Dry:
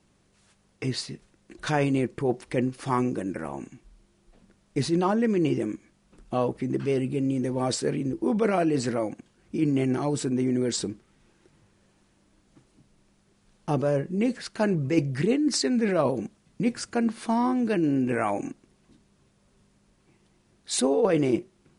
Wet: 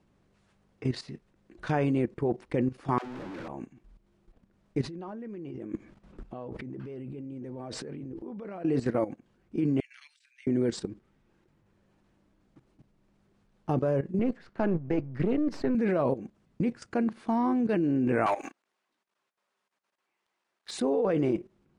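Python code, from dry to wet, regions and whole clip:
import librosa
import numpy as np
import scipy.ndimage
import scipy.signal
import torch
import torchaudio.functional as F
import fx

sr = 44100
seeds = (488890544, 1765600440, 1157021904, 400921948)

y = fx.chain(x, sr, fx.clip_1bit(),
    fx.air_absorb(metres=54.0),
    fx.dispersion(late='lows', ms=71.0, hz=410.0), at=(2.98, 3.48))
y = fx.chain(y, sr, fx.high_shelf(hz=5900.0, db=-7.0),
    fx.over_compress(threshold_db=-36.0, ratio=-1.0), at=(4.81, 8.65))
y = fx.chain(y, sr, fx.steep_highpass(hz=2000.0, slope=36),
    fx.over_compress(threshold_db=-42.0, ratio=-0.5),
    fx.high_shelf(hz=6600.0, db=-9.5), at=(9.8, 10.47))
y = fx.chain(y, sr, fx.halfwave_gain(db=-7.0),
    fx.lowpass(hz=2800.0, slope=6),
    fx.band_squash(depth_pct=40), at=(14.19, 15.75))
y = fx.chain(y, sr, fx.highpass(hz=940.0, slope=12),
    fx.leveller(passes=3), at=(18.26, 20.71))
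y = fx.lowpass(y, sr, hz=1700.0, slope=6)
y = fx.level_steps(y, sr, step_db=14)
y = y * librosa.db_to_amplitude(2.5)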